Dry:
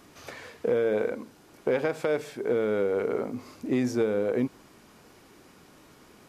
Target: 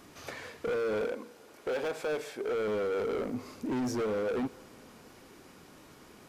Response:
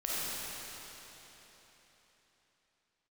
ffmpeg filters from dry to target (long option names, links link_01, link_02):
-filter_complex "[0:a]asettb=1/sr,asplit=3[link_01][link_02][link_03];[link_01]atrim=end=1.074[link_04];[link_02]atrim=start=1.07:end=2.68,asetpts=PTS-STARTPTS,afade=type=in:duration=0.004:curve=qsin,afade=type=out:start_time=1.606:duration=0.004:curve=qsin,bass=frequency=250:gain=-12,treble=frequency=4000:gain=-1[link_05];[link_03]atrim=start=2.676[link_06];[link_04][link_05]acrossfade=duration=0.004:curve1=hsin:curve2=qsin[link_07];[link_07][link_06]acrossfade=duration=0.004:curve1=qsin:curve2=hsin,asoftclip=type=hard:threshold=-29dB,asplit=2[link_08][link_09];[1:a]atrim=start_sample=2205,adelay=31[link_10];[link_09][link_10]afir=irnorm=-1:irlink=0,volume=-29dB[link_11];[link_08][link_11]amix=inputs=2:normalize=0"